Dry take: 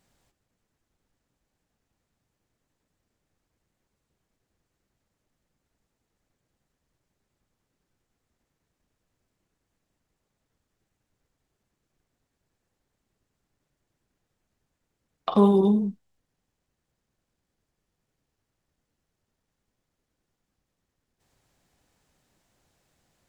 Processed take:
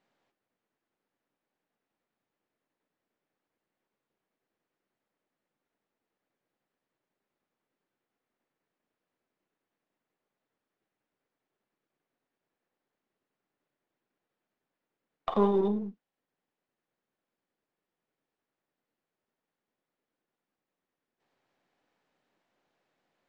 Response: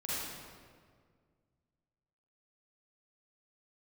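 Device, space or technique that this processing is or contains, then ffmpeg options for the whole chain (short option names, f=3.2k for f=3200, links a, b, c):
crystal radio: -af "highpass=270,lowpass=3.1k,aeval=exprs='if(lt(val(0),0),0.708*val(0),val(0))':c=same,volume=-2.5dB"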